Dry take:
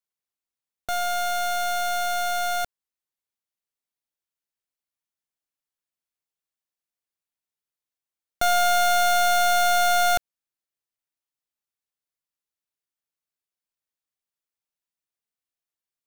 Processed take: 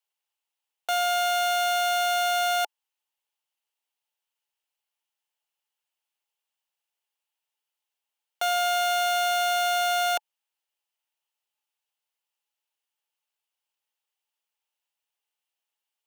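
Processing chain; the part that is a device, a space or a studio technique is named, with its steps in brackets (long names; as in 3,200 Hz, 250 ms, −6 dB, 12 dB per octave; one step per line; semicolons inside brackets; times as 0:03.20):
laptop speaker (high-pass filter 410 Hz 24 dB per octave; parametric band 860 Hz +10.5 dB 0.23 octaves; parametric band 2,900 Hz +9.5 dB 0.41 octaves; brickwall limiter −19 dBFS, peak gain reduction 8.5 dB)
level +2.5 dB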